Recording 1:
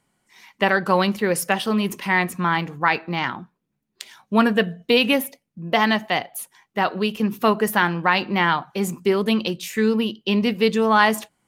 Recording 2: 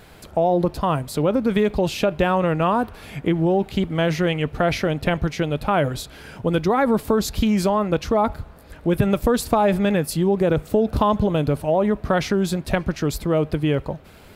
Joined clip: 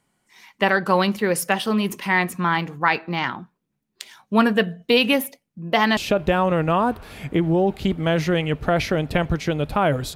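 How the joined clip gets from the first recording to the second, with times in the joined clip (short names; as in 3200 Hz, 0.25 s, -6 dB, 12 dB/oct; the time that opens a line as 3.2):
recording 1
5.97 switch to recording 2 from 1.89 s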